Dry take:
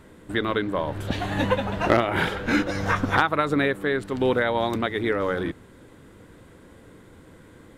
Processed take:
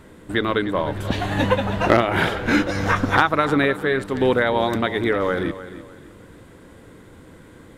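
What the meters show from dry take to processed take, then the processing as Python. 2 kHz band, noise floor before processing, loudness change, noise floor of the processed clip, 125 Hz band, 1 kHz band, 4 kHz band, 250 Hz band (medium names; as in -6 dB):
+3.5 dB, -50 dBFS, +3.5 dB, -46 dBFS, +4.0 dB, +3.5 dB, +3.5 dB, +3.5 dB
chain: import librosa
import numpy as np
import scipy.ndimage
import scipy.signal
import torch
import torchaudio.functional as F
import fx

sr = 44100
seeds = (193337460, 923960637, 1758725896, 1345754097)

y = fx.echo_feedback(x, sr, ms=302, feedback_pct=30, wet_db=-14)
y = y * librosa.db_to_amplitude(3.5)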